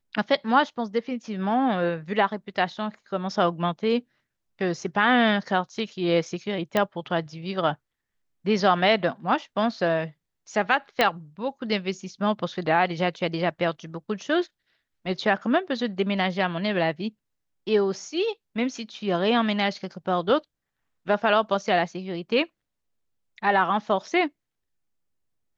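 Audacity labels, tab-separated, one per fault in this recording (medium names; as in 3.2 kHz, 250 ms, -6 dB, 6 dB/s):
6.770000	6.770000	pop -9 dBFS
11.010000	11.010000	pop -7 dBFS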